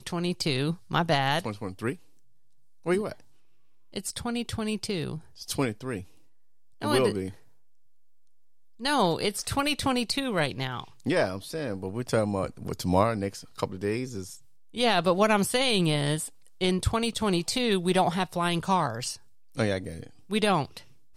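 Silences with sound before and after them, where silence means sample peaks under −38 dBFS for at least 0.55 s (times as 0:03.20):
0:01.95–0:02.86
0:03.13–0:03.94
0:06.03–0:06.82
0:07.31–0:08.80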